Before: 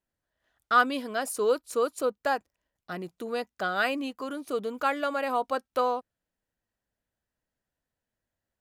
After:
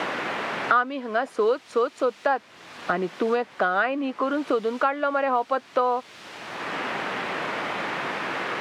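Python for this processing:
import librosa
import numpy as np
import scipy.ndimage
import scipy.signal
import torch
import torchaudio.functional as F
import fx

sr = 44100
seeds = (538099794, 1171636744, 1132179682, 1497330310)

p1 = fx.peak_eq(x, sr, hz=980.0, db=3.5, octaves=2.0)
p2 = fx.quant_dither(p1, sr, seeds[0], bits=6, dither='triangular')
p3 = p1 + (p2 * librosa.db_to_amplitude(-8.5))
p4 = fx.bandpass_edges(p3, sr, low_hz=170.0, high_hz=2800.0)
y = fx.band_squash(p4, sr, depth_pct=100)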